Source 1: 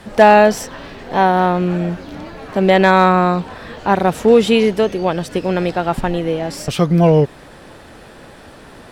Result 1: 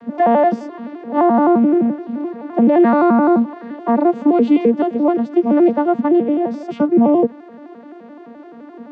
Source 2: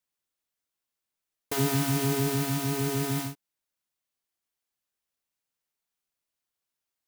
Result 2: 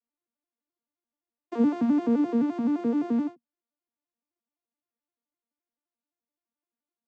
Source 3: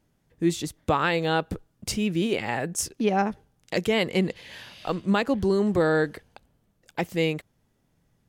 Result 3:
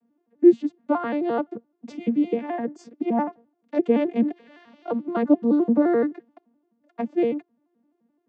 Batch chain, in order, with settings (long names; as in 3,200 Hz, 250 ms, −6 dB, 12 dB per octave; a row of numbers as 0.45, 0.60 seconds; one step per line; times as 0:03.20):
vocoder with an arpeggio as carrier major triad, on A#3, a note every 86 ms
brickwall limiter −9 dBFS
low-pass filter 1,000 Hz 6 dB per octave
level +4.5 dB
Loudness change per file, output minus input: −0.5, +2.0, +2.5 LU